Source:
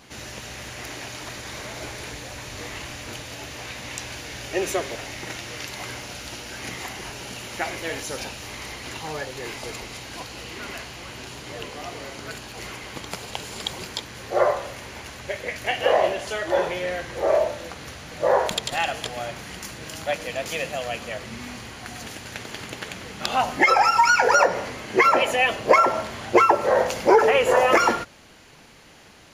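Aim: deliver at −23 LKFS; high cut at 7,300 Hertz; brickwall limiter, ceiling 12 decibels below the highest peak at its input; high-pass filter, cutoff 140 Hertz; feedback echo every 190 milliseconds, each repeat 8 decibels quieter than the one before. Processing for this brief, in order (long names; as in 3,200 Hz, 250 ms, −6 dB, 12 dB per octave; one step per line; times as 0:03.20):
high-pass filter 140 Hz
low-pass filter 7,300 Hz
brickwall limiter −15.5 dBFS
repeating echo 190 ms, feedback 40%, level −8 dB
level +5.5 dB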